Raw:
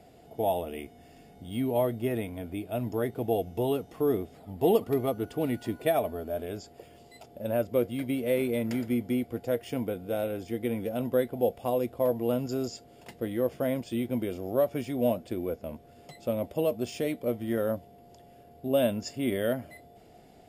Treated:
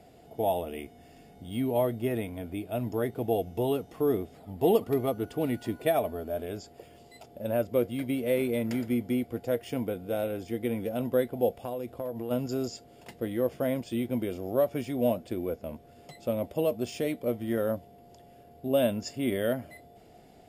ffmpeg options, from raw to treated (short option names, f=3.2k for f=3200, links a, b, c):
-filter_complex "[0:a]asplit=3[a][b][c];[a]afade=t=out:st=11.63:d=0.02[d];[b]acompressor=threshold=-30dB:ratio=10:attack=3.2:release=140:knee=1:detection=peak,afade=t=in:st=11.63:d=0.02,afade=t=out:st=12.3:d=0.02[e];[c]afade=t=in:st=12.3:d=0.02[f];[d][e][f]amix=inputs=3:normalize=0"